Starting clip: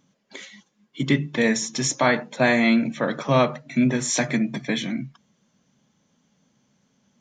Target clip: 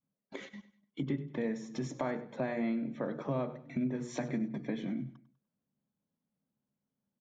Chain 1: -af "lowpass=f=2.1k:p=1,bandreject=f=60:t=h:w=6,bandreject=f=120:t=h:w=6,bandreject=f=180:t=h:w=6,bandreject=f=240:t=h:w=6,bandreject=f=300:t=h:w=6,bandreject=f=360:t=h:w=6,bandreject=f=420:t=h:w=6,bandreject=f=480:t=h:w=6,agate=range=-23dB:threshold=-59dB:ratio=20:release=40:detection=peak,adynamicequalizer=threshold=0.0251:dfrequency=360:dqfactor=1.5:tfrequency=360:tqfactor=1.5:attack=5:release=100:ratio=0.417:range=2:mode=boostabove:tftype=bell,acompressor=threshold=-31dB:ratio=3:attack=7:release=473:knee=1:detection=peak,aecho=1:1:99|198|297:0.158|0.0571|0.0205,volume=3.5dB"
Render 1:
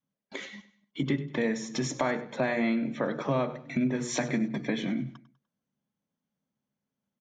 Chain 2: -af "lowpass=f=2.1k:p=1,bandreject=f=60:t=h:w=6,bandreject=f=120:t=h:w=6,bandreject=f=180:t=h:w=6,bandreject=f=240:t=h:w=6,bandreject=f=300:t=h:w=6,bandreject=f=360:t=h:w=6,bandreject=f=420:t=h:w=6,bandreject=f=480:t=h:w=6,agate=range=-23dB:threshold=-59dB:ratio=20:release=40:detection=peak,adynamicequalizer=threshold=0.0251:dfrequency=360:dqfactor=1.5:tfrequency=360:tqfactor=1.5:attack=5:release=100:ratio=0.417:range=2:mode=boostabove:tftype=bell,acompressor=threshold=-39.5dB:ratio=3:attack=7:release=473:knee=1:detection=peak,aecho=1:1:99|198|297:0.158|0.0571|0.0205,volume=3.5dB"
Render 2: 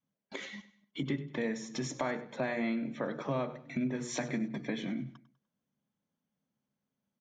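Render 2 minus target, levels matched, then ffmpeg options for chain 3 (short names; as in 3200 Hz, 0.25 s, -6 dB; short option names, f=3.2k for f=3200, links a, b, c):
2000 Hz band +5.5 dB
-af "lowpass=f=670:p=1,bandreject=f=60:t=h:w=6,bandreject=f=120:t=h:w=6,bandreject=f=180:t=h:w=6,bandreject=f=240:t=h:w=6,bandreject=f=300:t=h:w=6,bandreject=f=360:t=h:w=6,bandreject=f=420:t=h:w=6,bandreject=f=480:t=h:w=6,agate=range=-23dB:threshold=-59dB:ratio=20:release=40:detection=peak,adynamicequalizer=threshold=0.0251:dfrequency=360:dqfactor=1.5:tfrequency=360:tqfactor=1.5:attack=5:release=100:ratio=0.417:range=2:mode=boostabove:tftype=bell,acompressor=threshold=-39.5dB:ratio=3:attack=7:release=473:knee=1:detection=peak,aecho=1:1:99|198|297:0.158|0.0571|0.0205,volume=3.5dB"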